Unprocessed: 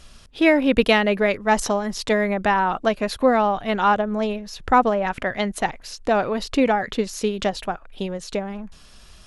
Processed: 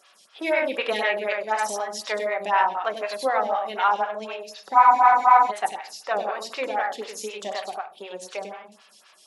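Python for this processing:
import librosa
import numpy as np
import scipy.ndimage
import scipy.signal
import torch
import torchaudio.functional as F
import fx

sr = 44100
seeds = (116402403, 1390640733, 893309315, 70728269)

p1 = fx.spec_quant(x, sr, step_db=15)
p2 = scipy.signal.sosfilt(scipy.signal.butter(2, 710.0, 'highpass', fs=sr, output='sos'), p1)
p3 = p2 + fx.echo_single(p2, sr, ms=98, db=-4.0, dry=0)
p4 = fx.room_shoebox(p3, sr, seeds[0], volume_m3=730.0, walls='furnished', distance_m=1.1)
p5 = fx.spec_freeze(p4, sr, seeds[1], at_s=4.76, hold_s=0.74)
y = fx.stagger_phaser(p5, sr, hz=4.0)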